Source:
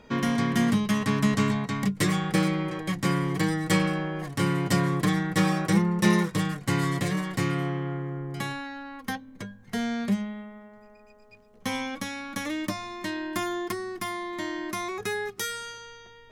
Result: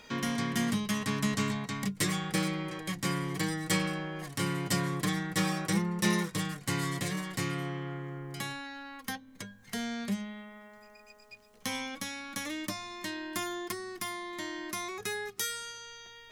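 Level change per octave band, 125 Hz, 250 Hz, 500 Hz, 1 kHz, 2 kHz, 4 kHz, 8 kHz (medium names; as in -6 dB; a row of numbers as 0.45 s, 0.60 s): -7.5 dB, -7.5 dB, -7.0 dB, -6.0 dB, -4.5 dB, -1.5 dB, +0.5 dB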